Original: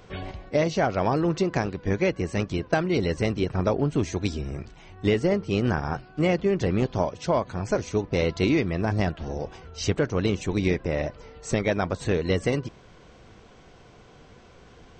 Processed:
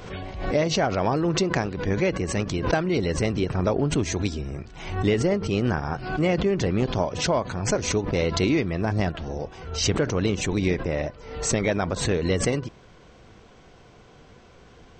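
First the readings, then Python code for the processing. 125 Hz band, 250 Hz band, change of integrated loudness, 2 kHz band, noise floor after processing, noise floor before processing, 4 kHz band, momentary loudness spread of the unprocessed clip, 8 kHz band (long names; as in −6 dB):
+1.0 dB, +0.5 dB, +1.0 dB, +1.5 dB, −51 dBFS, −51 dBFS, +5.0 dB, 9 LU, +10.0 dB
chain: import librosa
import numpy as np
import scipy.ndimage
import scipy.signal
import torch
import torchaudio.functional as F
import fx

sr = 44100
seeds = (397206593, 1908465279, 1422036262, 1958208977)

y = fx.pre_swell(x, sr, db_per_s=70.0)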